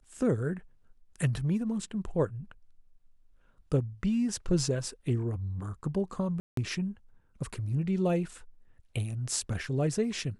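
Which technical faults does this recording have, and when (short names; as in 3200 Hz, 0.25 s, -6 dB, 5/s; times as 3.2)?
6.4–6.57 gap 0.173 s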